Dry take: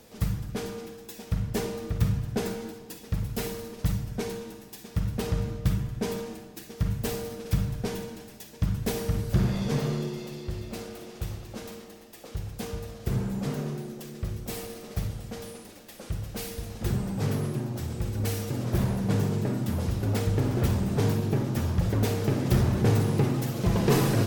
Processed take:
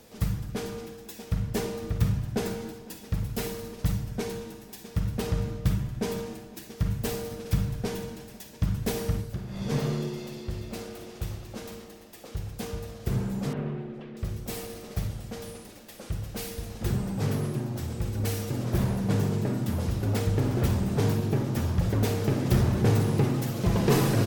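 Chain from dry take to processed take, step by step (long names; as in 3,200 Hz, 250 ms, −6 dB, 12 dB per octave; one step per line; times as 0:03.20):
0:09.10–0:09.76: duck −14 dB, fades 0.29 s
0:13.53–0:14.17: low-pass filter 2,900 Hz 24 dB per octave
slap from a distant wall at 87 metres, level −21 dB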